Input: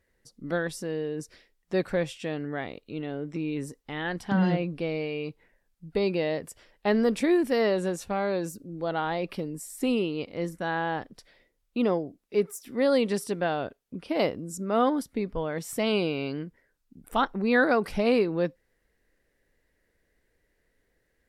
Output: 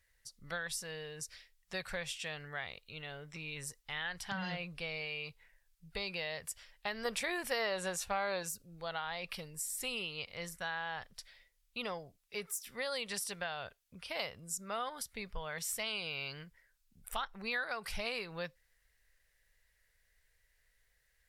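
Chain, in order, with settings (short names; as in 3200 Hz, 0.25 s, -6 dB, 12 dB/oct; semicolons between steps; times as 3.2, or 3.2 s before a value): passive tone stack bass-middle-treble 10-0-10; compressor 4:1, threshold -40 dBFS, peak gain reduction 11.5 dB; 7.05–8.43 bell 660 Hz +6 dB 2.9 oct; gain +4.5 dB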